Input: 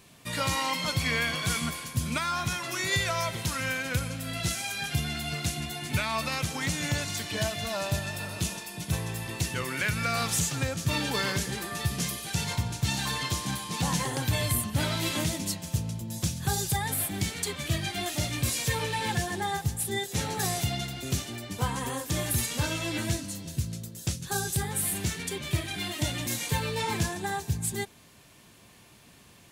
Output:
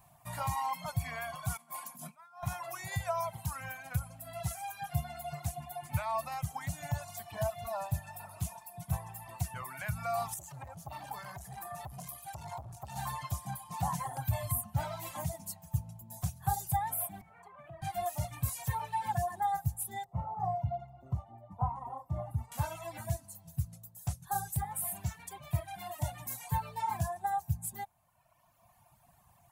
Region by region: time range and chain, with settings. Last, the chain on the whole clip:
1.57–2.43 s: steep high-pass 180 Hz 48 dB/octave + compressor with a negative ratio -37 dBFS, ratio -0.5
10.34–12.96 s: compression 2.5:1, threshold -29 dBFS + transformer saturation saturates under 900 Hz
17.21–17.82 s: three-band isolator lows -15 dB, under 170 Hz, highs -24 dB, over 2.1 kHz + hum notches 50/100/150/200/250/300 Hz + compression 12:1, threshold -37 dBFS
20.04–22.52 s: Savitzky-Golay filter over 65 samples + doubling 43 ms -12 dB
whole clip: tilt shelf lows -3 dB, about 1.1 kHz; reverb removal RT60 1.8 s; FFT filter 140 Hz 0 dB, 270 Hz -17 dB, 470 Hz -19 dB, 710 Hz +6 dB, 1 kHz 0 dB, 1.5 kHz -11 dB, 3.5 kHz -21 dB, 5.3 kHz -19 dB, 15 kHz -3 dB

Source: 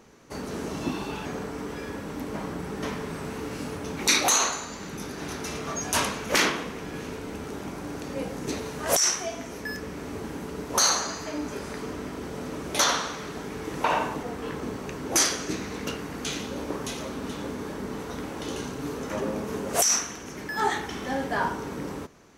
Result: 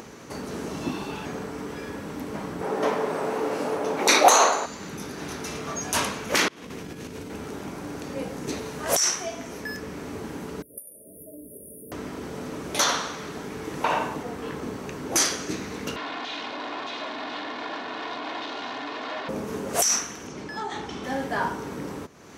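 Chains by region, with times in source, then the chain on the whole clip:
2.61–4.66 s: high-pass 320 Hz 6 dB/octave + peaking EQ 620 Hz +14.5 dB 2.1 oct
6.48–7.30 s: peaking EQ 1.1 kHz -6 dB 2.7 oct + compressor with a negative ratio -39 dBFS, ratio -0.5
10.62–11.92 s: pre-emphasis filter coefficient 0.9 + compression 1.5:1, threshold -45 dBFS + brick-wall FIR band-stop 660–9100 Hz
15.96–19.29 s: one-bit comparator + cabinet simulation 300–4200 Hz, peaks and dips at 400 Hz -10 dB, 600 Hz +5 dB, 930 Hz +7 dB, 1.7 kHz +3 dB, 3.8 kHz +4 dB + comb 2.8 ms, depth 56%
20.27–21.04 s: low-pass 6.2 kHz + peaking EQ 1.8 kHz -6.5 dB 0.6 oct + compression 10:1, threshold -27 dBFS
whole clip: high-pass 67 Hz; upward compressor, threshold -33 dBFS

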